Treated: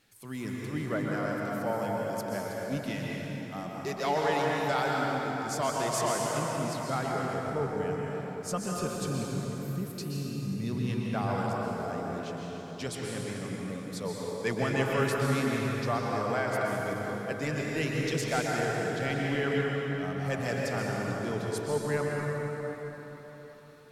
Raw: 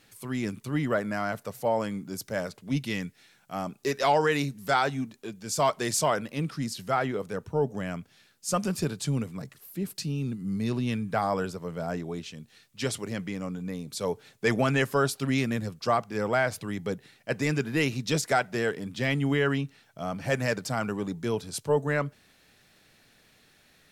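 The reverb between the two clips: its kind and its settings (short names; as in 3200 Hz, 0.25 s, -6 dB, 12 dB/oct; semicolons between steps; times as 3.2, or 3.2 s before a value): plate-style reverb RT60 4.4 s, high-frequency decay 0.6×, pre-delay 0.11 s, DRR -3 dB; gain -7 dB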